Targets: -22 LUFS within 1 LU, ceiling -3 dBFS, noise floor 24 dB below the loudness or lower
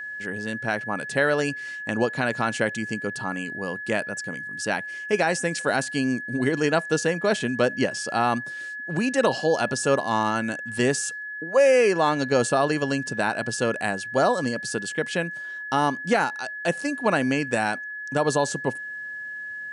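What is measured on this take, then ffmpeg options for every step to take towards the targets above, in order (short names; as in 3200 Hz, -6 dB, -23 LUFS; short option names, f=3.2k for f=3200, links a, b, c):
steady tone 1700 Hz; tone level -32 dBFS; loudness -25.0 LUFS; peak -9.0 dBFS; loudness target -22.0 LUFS
-> -af "bandreject=f=1.7k:w=30"
-af "volume=3dB"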